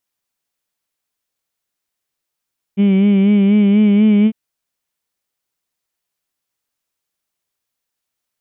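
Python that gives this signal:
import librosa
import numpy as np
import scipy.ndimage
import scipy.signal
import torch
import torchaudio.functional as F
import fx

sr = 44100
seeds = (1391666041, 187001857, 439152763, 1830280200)

y = fx.vowel(sr, seeds[0], length_s=1.55, word='heed', hz=195.0, glide_st=1.5, vibrato_hz=4.1, vibrato_st=0.6)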